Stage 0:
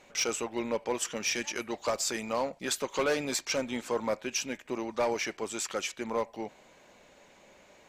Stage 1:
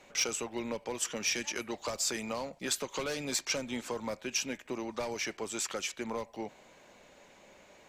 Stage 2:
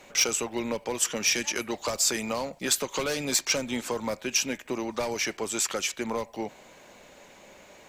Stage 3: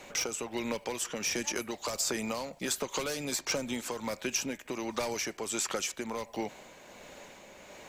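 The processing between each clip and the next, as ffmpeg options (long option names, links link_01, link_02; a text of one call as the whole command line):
ffmpeg -i in.wav -filter_complex "[0:a]acrossover=split=190|3000[link_01][link_02][link_03];[link_02]acompressor=threshold=-34dB:ratio=6[link_04];[link_01][link_04][link_03]amix=inputs=3:normalize=0" out.wav
ffmpeg -i in.wav -af "highshelf=frequency=11000:gain=8,volume=6dB" out.wav
ffmpeg -i in.wav -filter_complex "[0:a]acrossover=split=1400|5400[link_01][link_02][link_03];[link_01]acompressor=threshold=-34dB:ratio=4[link_04];[link_02]acompressor=threshold=-41dB:ratio=4[link_05];[link_03]acompressor=threshold=-36dB:ratio=4[link_06];[link_04][link_05][link_06]amix=inputs=3:normalize=0,tremolo=f=1.4:d=0.34,volume=2.5dB" out.wav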